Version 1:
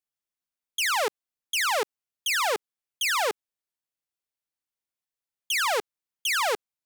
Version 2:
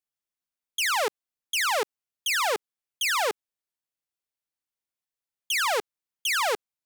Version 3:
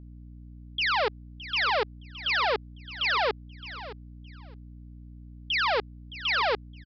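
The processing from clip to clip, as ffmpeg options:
-af anull
-af "aresample=11025,aresample=44100,aecho=1:1:616|1232:0.178|0.0338,aeval=exprs='val(0)+0.00631*(sin(2*PI*60*n/s)+sin(2*PI*2*60*n/s)/2+sin(2*PI*3*60*n/s)/3+sin(2*PI*4*60*n/s)/4+sin(2*PI*5*60*n/s)/5)':c=same"

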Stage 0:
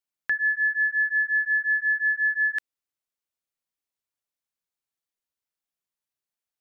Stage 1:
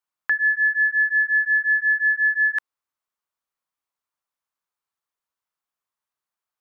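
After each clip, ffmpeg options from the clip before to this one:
-af "equalizer=f=1100:w=1.2:g=12,volume=0.841"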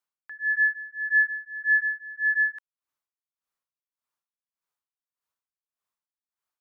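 -af "aeval=exprs='val(0)*pow(10,-21*(0.5-0.5*cos(2*PI*1.7*n/s))/20)':c=same"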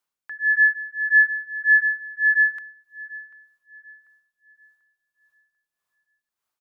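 -filter_complex "[0:a]asplit=2[s0][s1];[s1]adelay=741,lowpass=f=1600:p=1,volume=0.168,asplit=2[s2][s3];[s3]adelay=741,lowpass=f=1600:p=1,volume=0.5,asplit=2[s4][s5];[s5]adelay=741,lowpass=f=1600:p=1,volume=0.5,asplit=2[s6][s7];[s7]adelay=741,lowpass=f=1600:p=1,volume=0.5,asplit=2[s8][s9];[s9]adelay=741,lowpass=f=1600:p=1,volume=0.5[s10];[s0][s2][s4][s6][s8][s10]amix=inputs=6:normalize=0,volume=1.88"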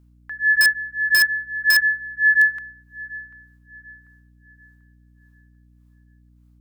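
-filter_complex "[0:a]aeval=exprs='val(0)+0.00178*(sin(2*PI*60*n/s)+sin(2*PI*2*60*n/s)/2+sin(2*PI*3*60*n/s)/3+sin(2*PI*4*60*n/s)/4+sin(2*PI*5*60*n/s)/5)':c=same,asplit=2[s0][s1];[s1]aeval=exprs='(mod(3.76*val(0)+1,2)-1)/3.76':c=same,volume=0.708[s2];[s0][s2]amix=inputs=2:normalize=0,volume=0.794"

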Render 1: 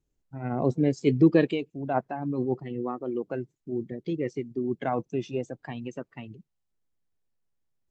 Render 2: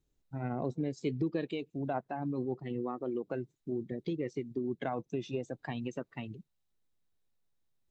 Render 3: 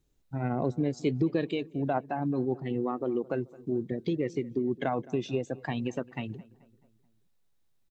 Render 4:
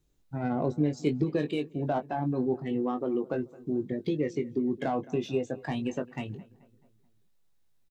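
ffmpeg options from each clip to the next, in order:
-af "equalizer=f=3800:w=6.4:g=7,acompressor=threshold=0.0251:ratio=4"
-filter_complex "[0:a]asplit=2[s0][s1];[s1]adelay=216,lowpass=f=2100:p=1,volume=0.0891,asplit=2[s2][s3];[s3]adelay=216,lowpass=f=2100:p=1,volume=0.54,asplit=2[s4][s5];[s5]adelay=216,lowpass=f=2100:p=1,volume=0.54,asplit=2[s6][s7];[s7]adelay=216,lowpass=f=2100:p=1,volume=0.54[s8];[s0][s2][s4][s6][s8]amix=inputs=5:normalize=0,volume=1.88"
-filter_complex "[0:a]acrossover=split=890[s0][s1];[s1]asoftclip=type=tanh:threshold=0.0188[s2];[s0][s2]amix=inputs=2:normalize=0,asplit=2[s3][s4];[s4]adelay=20,volume=0.473[s5];[s3][s5]amix=inputs=2:normalize=0"

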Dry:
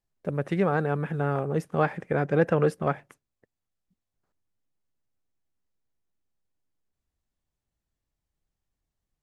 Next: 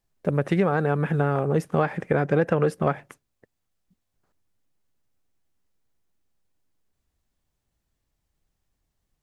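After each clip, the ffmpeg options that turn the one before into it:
-af "acompressor=threshold=0.0631:ratio=6,volume=2.24"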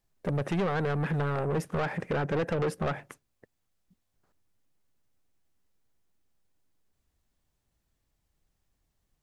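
-af "asoftclip=type=tanh:threshold=0.0596"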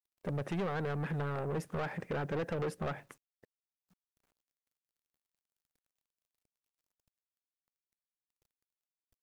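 -af "acrusher=bits=10:mix=0:aa=0.000001,volume=0.473"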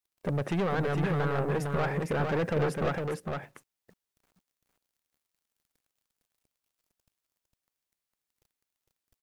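-af "aecho=1:1:456:0.631,volume=2"

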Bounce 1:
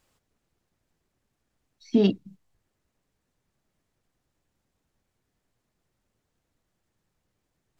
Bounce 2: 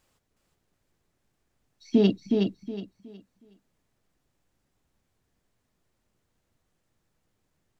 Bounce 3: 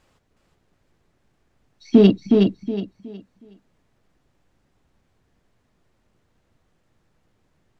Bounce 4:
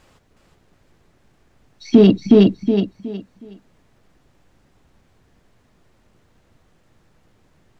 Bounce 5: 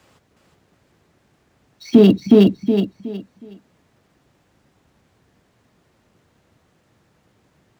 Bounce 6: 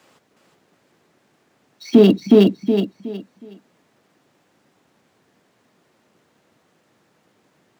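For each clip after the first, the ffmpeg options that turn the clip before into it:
-af "aecho=1:1:367|734|1101|1468:0.631|0.17|0.046|0.0124"
-filter_complex "[0:a]aemphasis=mode=reproduction:type=50kf,asplit=2[s0][s1];[s1]asoftclip=type=hard:threshold=0.0531,volume=0.266[s2];[s0][s2]amix=inputs=2:normalize=0,volume=2.37"
-af "alimiter=limit=0.299:level=0:latency=1:release=106,volume=2.66"
-filter_complex "[0:a]highpass=81,acrossover=split=120|410|1400[s0][s1][s2][s3];[s3]acrusher=bits=3:mode=log:mix=0:aa=0.000001[s4];[s0][s1][s2][s4]amix=inputs=4:normalize=0"
-af "highpass=200,volume=1.12"

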